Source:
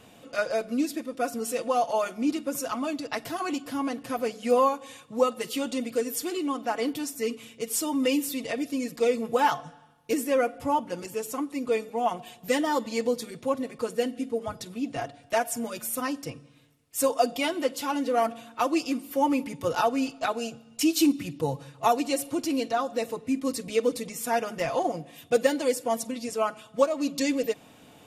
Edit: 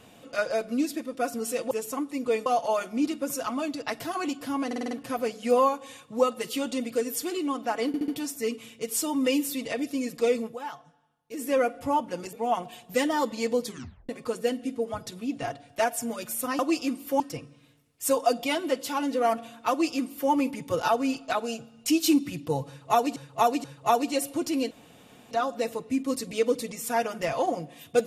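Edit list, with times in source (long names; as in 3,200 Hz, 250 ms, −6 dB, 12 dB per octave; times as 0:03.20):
0:03.91: stutter 0.05 s, 6 plays
0:06.87: stutter 0.07 s, 4 plays
0:09.19–0:10.28: duck −14 dB, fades 0.16 s
0:11.12–0:11.87: move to 0:01.71
0:13.21: tape stop 0.42 s
0:18.63–0:19.24: duplicate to 0:16.13
0:21.61–0:22.09: repeat, 3 plays
0:22.68: splice in room tone 0.60 s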